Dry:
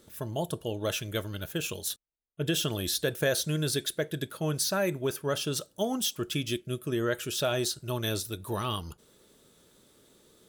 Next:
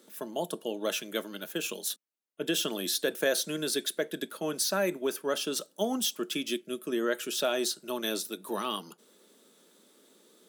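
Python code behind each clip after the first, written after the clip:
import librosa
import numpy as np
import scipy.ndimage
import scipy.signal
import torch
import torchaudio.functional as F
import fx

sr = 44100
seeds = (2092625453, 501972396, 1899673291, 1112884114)

y = scipy.signal.sosfilt(scipy.signal.butter(8, 190.0, 'highpass', fs=sr, output='sos'), x)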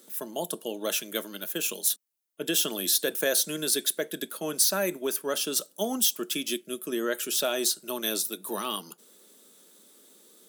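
y = fx.high_shelf(x, sr, hz=6400.0, db=12.0)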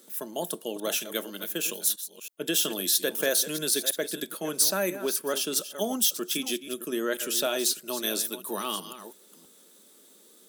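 y = fx.reverse_delay(x, sr, ms=326, wet_db=-12.0)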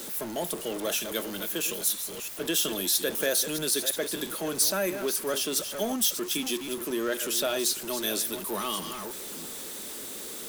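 y = x + 0.5 * 10.0 ** (-31.0 / 20.0) * np.sign(x)
y = F.gain(torch.from_numpy(y), -2.5).numpy()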